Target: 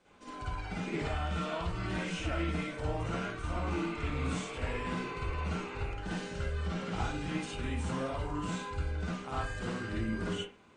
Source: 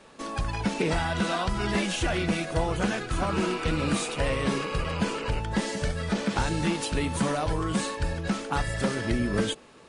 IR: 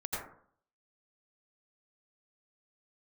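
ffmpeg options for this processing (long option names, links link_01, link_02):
-filter_complex "[1:a]atrim=start_sample=2205,asetrate=79380,aresample=44100[link_01];[0:a][link_01]afir=irnorm=-1:irlink=0,asetrate=40517,aresample=44100,volume=-7.5dB"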